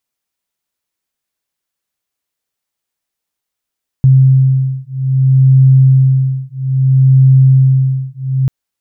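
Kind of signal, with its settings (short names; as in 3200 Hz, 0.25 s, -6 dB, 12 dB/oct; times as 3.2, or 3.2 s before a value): beating tones 132 Hz, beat 0.61 Hz, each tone -9 dBFS 4.44 s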